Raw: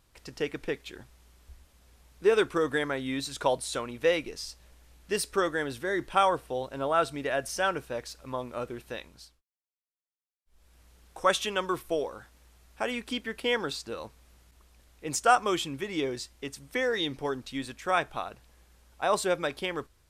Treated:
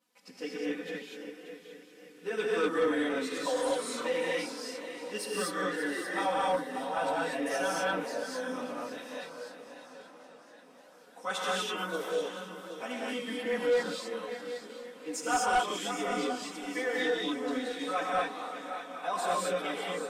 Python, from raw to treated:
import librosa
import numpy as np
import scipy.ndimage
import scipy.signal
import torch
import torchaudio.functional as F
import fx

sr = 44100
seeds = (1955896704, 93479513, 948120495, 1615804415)

y = scipy.signal.sosfilt(scipy.signal.butter(4, 170.0, 'highpass', fs=sr, output='sos'), x)
y = y + 0.78 * np.pad(y, (int(4.0 * sr / 1000.0), 0))[:len(y)]
y = fx.echo_swing(y, sr, ms=777, ratio=3, feedback_pct=35, wet_db=-11.5)
y = fx.chorus_voices(y, sr, voices=4, hz=0.48, base_ms=13, depth_ms=3.7, mix_pct=65)
y = fx.rev_gated(y, sr, seeds[0], gate_ms=270, shape='rising', drr_db=-4.5)
y = 10.0 ** (-13.0 / 20.0) * np.tanh(y / 10.0 ** (-13.0 / 20.0))
y = fx.echo_warbled(y, sr, ms=539, feedback_pct=74, rate_hz=2.8, cents=202, wet_db=-19.5)
y = y * librosa.db_to_amplitude(-7.0)